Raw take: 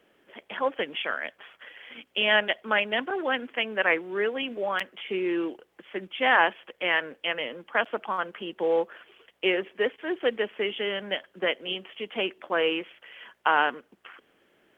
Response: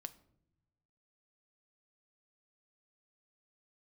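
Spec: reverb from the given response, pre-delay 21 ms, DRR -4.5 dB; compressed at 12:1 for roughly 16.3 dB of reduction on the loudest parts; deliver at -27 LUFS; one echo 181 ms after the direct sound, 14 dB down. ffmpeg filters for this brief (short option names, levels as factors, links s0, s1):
-filter_complex "[0:a]acompressor=threshold=0.0251:ratio=12,aecho=1:1:181:0.2,asplit=2[s0][s1];[1:a]atrim=start_sample=2205,adelay=21[s2];[s1][s2]afir=irnorm=-1:irlink=0,volume=2.82[s3];[s0][s3]amix=inputs=2:normalize=0,volume=1.68"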